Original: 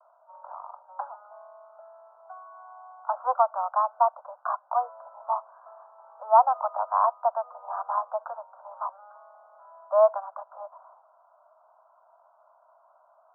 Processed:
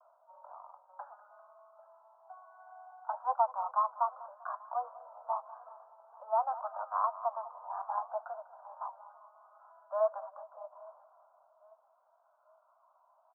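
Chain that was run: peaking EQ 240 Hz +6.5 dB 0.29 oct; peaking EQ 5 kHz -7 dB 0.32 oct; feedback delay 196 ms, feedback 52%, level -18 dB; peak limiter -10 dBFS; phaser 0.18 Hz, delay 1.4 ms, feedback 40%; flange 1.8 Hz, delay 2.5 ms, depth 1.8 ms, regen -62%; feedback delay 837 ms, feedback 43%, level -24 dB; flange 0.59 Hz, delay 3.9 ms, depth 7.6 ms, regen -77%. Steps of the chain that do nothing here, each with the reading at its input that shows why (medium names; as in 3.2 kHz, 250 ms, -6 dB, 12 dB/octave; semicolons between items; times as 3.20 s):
peaking EQ 240 Hz: input has nothing below 480 Hz; peaking EQ 5 kHz: input has nothing above 1.5 kHz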